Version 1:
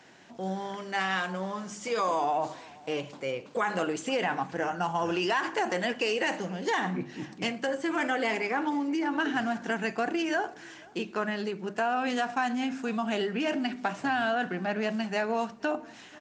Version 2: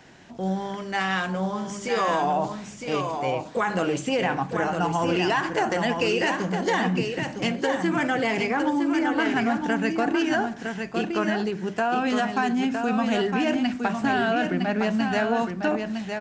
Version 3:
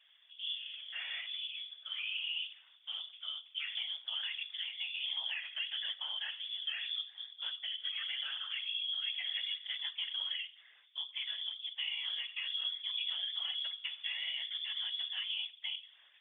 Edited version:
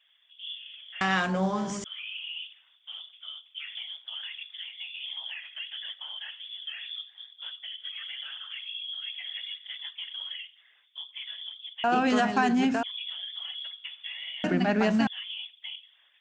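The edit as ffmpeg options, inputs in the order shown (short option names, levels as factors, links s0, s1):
-filter_complex "[1:a]asplit=3[s0][s1][s2];[2:a]asplit=4[s3][s4][s5][s6];[s3]atrim=end=1.012[s7];[s0]atrim=start=1.008:end=1.842[s8];[s4]atrim=start=1.838:end=11.842[s9];[s1]atrim=start=11.838:end=12.832[s10];[s5]atrim=start=12.828:end=14.442[s11];[s2]atrim=start=14.438:end=15.072[s12];[s6]atrim=start=15.068[s13];[s7][s8]acrossfade=d=0.004:c1=hsin:c2=hsin[s14];[s14][s9]acrossfade=d=0.004:c1=hsin:c2=hsin[s15];[s15][s10]acrossfade=d=0.004:c1=hsin:c2=hsin[s16];[s16][s11]acrossfade=d=0.004:c1=hsin:c2=hsin[s17];[s17][s12]acrossfade=d=0.004:c1=hsin:c2=hsin[s18];[s18][s13]acrossfade=d=0.004:c1=hsin:c2=hsin"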